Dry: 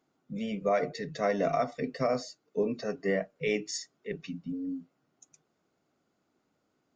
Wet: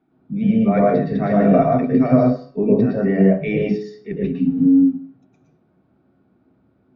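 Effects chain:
Bessel low-pass filter 2,700 Hz, order 6
0:04.35–0:04.79: slack as between gear wheels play −53 dBFS
hum removal 140.9 Hz, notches 34
convolution reverb RT60 0.40 s, pre-delay 106 ms, DRR −2.5 dB
level −5 dB

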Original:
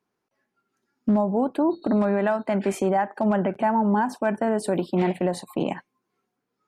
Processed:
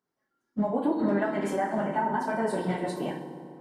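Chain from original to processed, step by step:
notch filter 2,500 Hz, Q 6.1
flutter between parallel walls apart 9.3 metres, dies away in 0.6 s
fake sidechain pumping 104 BPM, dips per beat 1, −4 dB, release 112 ms
time stretch by phase vocoder 0.54×
convolution reverb RT60 2.6 s, pre-delay 3 ms, DRR 5 dB
dynamic equaliser 2,200 Hz, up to +5 dB, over −44 dBFS, Q 1.2
level −3.5 dB

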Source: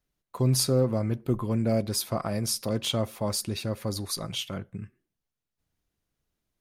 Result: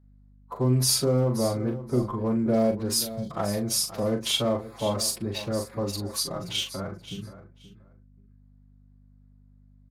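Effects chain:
adaptive Wiener filter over 15 samples
phase-vocoder stretch with locked phases 1.5×
low-shelf EQ 210 Hz −9 dB
in parallel at −3 dB: brickwall limiter −21.5 dBFS, peak gain reduction 8 dB
on the sum: mains hum 50 Hz, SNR 29 dB
time-frequency box erased 0:03.06–0:03.32, 240–3,100 Hz
double-tracking delay 40 ms −6.5 dB
on a send: repeating echo 528 ms, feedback 18%, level −14 dB

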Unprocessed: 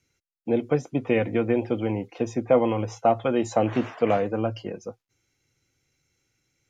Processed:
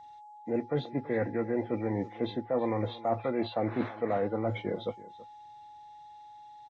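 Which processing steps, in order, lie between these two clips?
hearing-aid frequency compression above 1,300 Hz 1.5 to 1
reversed playback
downward compressor 6 to 1, threshold −29 dBFS, peak gain reduction 15 dB
reversed playback
bass and treble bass −2 dB, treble +8 dB
single-tap delay 329 ms −18.5 dB
steady tone 840 Hz −50 dBFS
level +2.5 dB

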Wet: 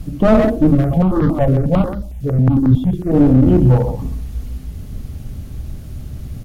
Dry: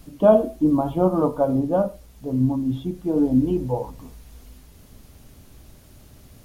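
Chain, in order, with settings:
low-shelf EQ 360 Hz +3.5 dB
mains-hum notches 50/100/150/200/250/300/350 Hz
far-end echo of a speakerphone 130 ms, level −8 dB
asymmetric clip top −22 dBFS
bass and treble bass +12 dB, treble −2 dB
notch filter 970 Hz, Q 12
boost into a limiter +7.5 dB
0:00.75–0:03.13: step-sequenced phaser 11 Hz 230–2,500 Hz
level −1 dB

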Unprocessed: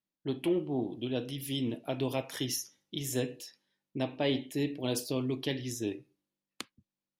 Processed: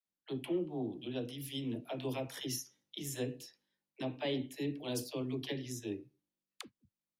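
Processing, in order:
all-pass dispersion lows, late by 68 ms, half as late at 410 Hz
level −5.5 dB

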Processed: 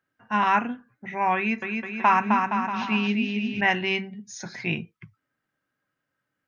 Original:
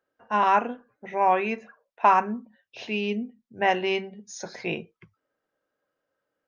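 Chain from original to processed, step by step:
octave-band graphic EQ 125/250/500/2,000 Hz +11/+4/−11/+6 dB
0:01.36–0:03.61: bouncing-ball delay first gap 260 ms, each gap 0.8×, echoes 5

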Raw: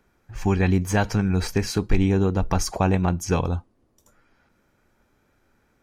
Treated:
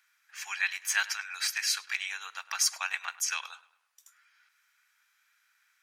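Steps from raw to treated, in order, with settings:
inverse Chebyshev high-pass filter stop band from 260 Hz, stop band 80 dB
on a send: feedback echo with a low-pass in the loop 102 ms, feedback 47%, low-pass 3,500 Hz, level −18 dB
on the sum: level +3.5 dB

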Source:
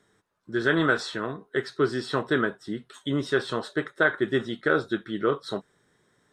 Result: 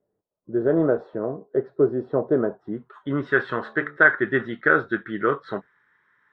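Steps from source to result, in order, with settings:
low-pass filter sweep 600 Hz → 1,800 Hz, 0:02.33–0:03.37
noise reduction from a noise print of the clip's start 13 dB
0:03.54–0:03.97: hum removal 73.23 Hz, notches 19
level +1 dB

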